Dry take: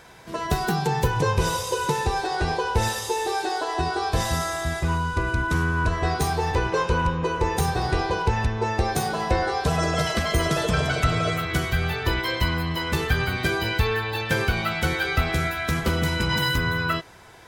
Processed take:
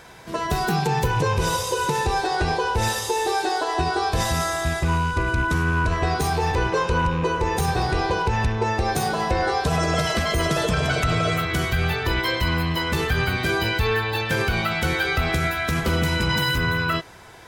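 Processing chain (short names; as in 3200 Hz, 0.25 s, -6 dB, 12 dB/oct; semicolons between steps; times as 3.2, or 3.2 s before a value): rattling part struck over -26 dBFS, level -31 dBFS; limiter -15.5 dBFS, peak gain reduction 6 dB; gain +3 dB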